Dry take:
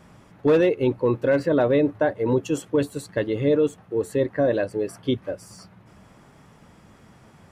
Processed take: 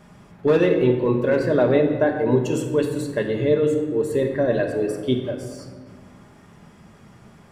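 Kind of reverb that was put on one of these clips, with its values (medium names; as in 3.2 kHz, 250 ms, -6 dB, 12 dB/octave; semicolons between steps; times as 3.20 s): simulated room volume 1200 m³, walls mixed, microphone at 1.3 m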